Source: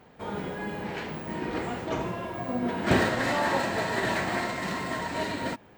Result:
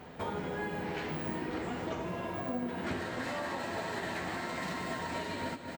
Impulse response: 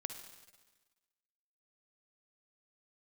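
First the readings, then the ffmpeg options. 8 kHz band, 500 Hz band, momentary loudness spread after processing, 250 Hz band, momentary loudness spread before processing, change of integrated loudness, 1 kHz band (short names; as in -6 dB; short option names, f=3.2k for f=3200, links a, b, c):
-8.0 dB, -7.0 dB, 1 LU, -6.5 dB, 10 LU, -7.5 dB, -7.5 dB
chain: -filter_complex "[0:a]asplit=2[a][b];[b]aecho=0:1:221:0.188[c];[a][c]amix=inputs=2:normalize=0,acompressor=threshold=-39dB:ratio=12,asplit=2[d][e];[1:a]atrim=start_sample=2205,adelay=12[f];[e][f]afir=irnorm=-1:irlink=0,volume=-5.5dB[g];[d][g]amix=inputs=2:normalize=0,volume=5dB"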